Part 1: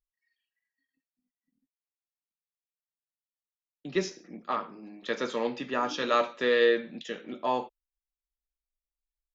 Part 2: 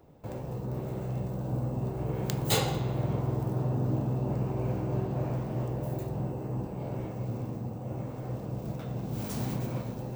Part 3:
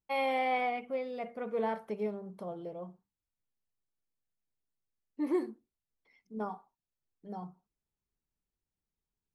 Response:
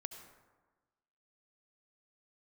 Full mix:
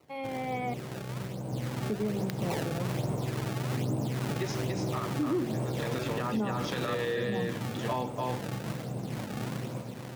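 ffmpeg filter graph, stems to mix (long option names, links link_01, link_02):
-filter_complex "[0:a]alimiter=limit=-18dB:level=0:latency=1,adelay=450,volume=-5.5dB,asplit=2[link_01][link_02];[link_02]volume=-4dB[link_03];[1:a]acrusher=samples=25:mix=1:aa=0.000001:lfo=1:lforange=40:lforate=1.2,volume=-3.5dB[link_04];[2:a]equalizer=frequency=220:width=0.93:gain=11.5,dynaudnorm=framelen=400:gausssize=3:maxgain=7dB,volume=-9.5dB,asplit=3[link_05][link_06][link_07];[link_05]atrim=end=0.74,asetpts=PTS-STARTPTS,afade=type=out:start_time=0.736:duration=0.004:curve=hsin[link_08];[link_06]atrim=start=0.74:end=1.87,asetpts=PTS-STARTPTS,volume=0[link_09];[link_07]atrim=start=1.87,asetpts=PTS-STARTPTS,afade=type=in:duration=0.004:curve=hsin[link_10];[link_08][link_09][link_10]concat=n=3:v=0:a=1,asplit=2[link_11][link_12];[link_12]apad=whole_len=431756[link_13];[link_01][link_13]sidechaincompress=threshold=-45dB:ratio=8:attack=16:release=522[link_14];[link_03]aecho=0:1:289:1[link_15];[link_14][link_04][link_11][link_15]amix=inputs=4:normalize=0,dynaudnorm=framelen=850:gausssize=5:maxgain=7dB,highpass=110,alimiter=limit=-22dB:level=0:latency=1:release=164"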